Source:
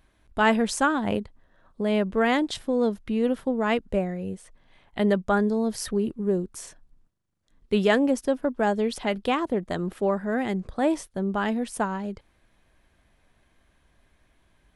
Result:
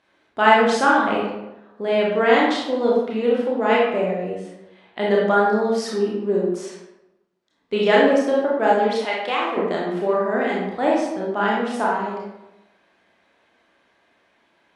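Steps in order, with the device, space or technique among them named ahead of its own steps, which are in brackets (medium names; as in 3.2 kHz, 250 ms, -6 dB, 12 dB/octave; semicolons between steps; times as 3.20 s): supermarket ceiling speaker (band-pass 300–5300 Hz; reverberation RT60 0.95 s, pre-delay 26 ms, DRR -4.5 dB); 9.05–9.57 s: high-pass 750 Hz 6 dB/octave; trim +1.5 dB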